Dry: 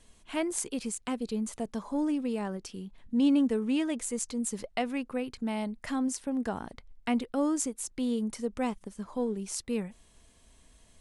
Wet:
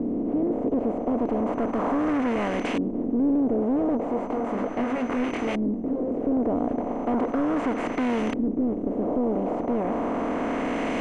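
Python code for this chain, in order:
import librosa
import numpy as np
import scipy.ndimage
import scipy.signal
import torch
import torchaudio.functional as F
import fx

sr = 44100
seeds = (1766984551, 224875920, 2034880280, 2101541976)

y = fx.bin_compress(x, sr, power=0.2)
y = fx.chorus_voices(y, sr, voices=2, hz=1.2, base_ms=22, depth_ms=3.0, mix_pct=40, at=(3.97, 6.21))
y = y + 10.0 ** (-38.0 / 20.0) * np.sin(2.0 * np.pi * 6100.0 * np.arange(len(y)) / sr)
y = 10.0 ** (-23.0 / 20.0) * np.tanh(y / 10.0 ** (-23.0 / 20.0))
y = fx.filter_lfo_lowpass(y, sr, shape='saw_up', hz=0.36, low_hz=300.0, high_hz=2600.0, q=1.3)
y = y * librosa.db_to_amplitude(2.5)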